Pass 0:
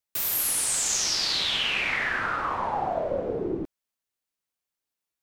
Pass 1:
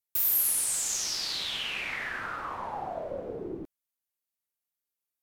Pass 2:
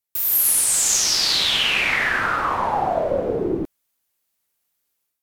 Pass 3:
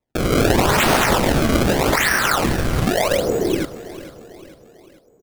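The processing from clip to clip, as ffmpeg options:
ffmpeg -i in.wav -af "equalizer=frequency=14000:width=0.63:gain=11,volume=-8dB" out.wav
ffmpeg -i in.wav -filter_complex "[0:a]asplit=2[link_01][link_02];[link_02]alimiter=limit=-22dB:level=0:latency=1:release=394,volume=1dB[link_03];[link_01][link_03]amix=inputs=2:normalize=0,dynaudnorm=framelen=120:gausssize=5:maxgain=10.5dB,volume=-2.5dB" out.wav
ffmpeg -i in.wav -af "acrusher=samples=28:mix=1:aa=0.000001:lfo=1:lforange=44.8:lforate=0.82,aecho=1:1:446|892|1338|1784:0.168|0.0806|0.0387|0.0186,volume=3dB" out.wav

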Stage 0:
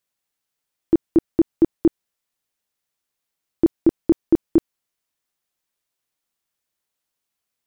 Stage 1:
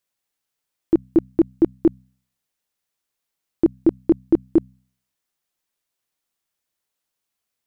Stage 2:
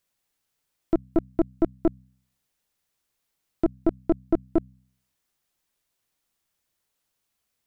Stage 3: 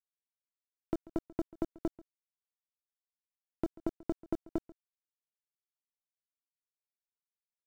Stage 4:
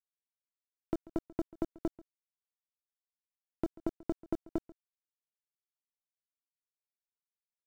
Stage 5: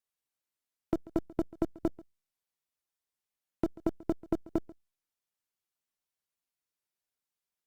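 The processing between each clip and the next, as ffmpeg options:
ffmpeg -i in.wav -af "bandreject=frequency=63.79:width_type=h:width=4,bandreject=frequency=127.58:width_type=h:width=4,bandreject=frequency=191.37:width_type=h:width=4,bandreject=frequency=255.16:width_type=h:width=4" out.wav
ffmpeg -i in.wav -af "lowshelf=frequency=160:gain=6.5,acompressor=threshold=-38dB:ratio=1.5,aeval=exprs='(tanh(10*val(0)+0.75)-tanh(0.75))/10':channel_layout=same,volume=7dB" out.wav
ffmpeg -i in.wav -af "acompressor=threshold=-24dB:ratio=12,aeval=exprs='val(0)*gte(abs(val(0)),0.00944)':channel_layout=same,aecho=1:1:138:0.0891,volume=-5.5dB" out.wav
ffmpeg -i in.wav -af anull out.wav
ffmpeg -i in.wav -af "volume=4dB" -ar 48000 -c:a libopus -b:a 64k out.opus

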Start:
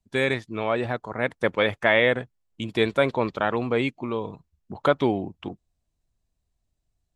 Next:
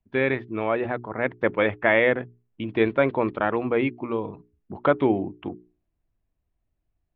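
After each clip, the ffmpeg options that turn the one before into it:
ffmpeg -i in.wav -af "lowpass=frequency=2700:width=0.5412,lowpass=frequency=2700:width=1.3066,equalizer=frequency=320:width=2.9:gain=5,bandreject=frequency=60:width_type=h:width=6,bandreject=frequency=120:width_type=h:width=6,bandreject=frequency=180:width_type=h:width=6,bandreject=frequency=240:width_type=h:width=6,bandreject=frequency=300:width_type=h:width=6,bandreject=frequency=360:width_type=h:width=6,bandreject=frequency=420:width_type=h:width=6" out.wav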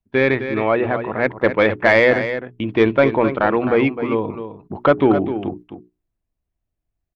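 ffmpeg -i in.wav -af "agate=range=-10dB:threshold=-43dB:ratio=16:detection=peak,acontrast=85,aecho=1:1:260:0.316" out.wav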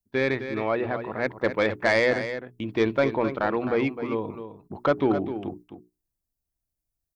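ffmpeg -i in.wav -af "aexciter=amount=3.8:drive=5.2:freq=4200,volume=-8dB" out.wav

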